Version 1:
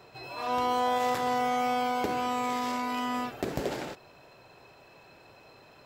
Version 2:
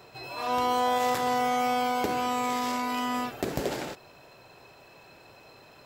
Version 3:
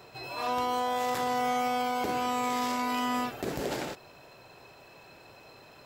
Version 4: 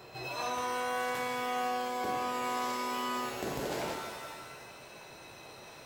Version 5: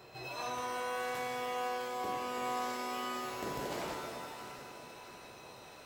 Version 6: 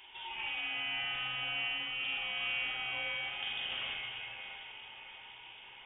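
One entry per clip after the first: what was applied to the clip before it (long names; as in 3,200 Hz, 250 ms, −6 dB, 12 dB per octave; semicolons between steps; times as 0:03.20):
high-shelf EQ 5,800 Hz +5.5 dB; level +1.5 dB
brickwall limiter −20 dBFS, peak gain reduction 6.5 dB
downward compressor 3 to 1, threshold −35 dBFS, peak gain reduction 8 dB; reverb with rising layers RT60 1.4 s, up +7 semitones, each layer −2 dB, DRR 4 dB
delay that swaps between a low-pass and a high-pass 332 ms, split 980 Hz, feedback 72%, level −8.5 dB; level −4 dB
voice inversion scrambler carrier 3,500 Hz; hollow resonant body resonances 780/2,200 Hz, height 11 dB, ringing for 65 ms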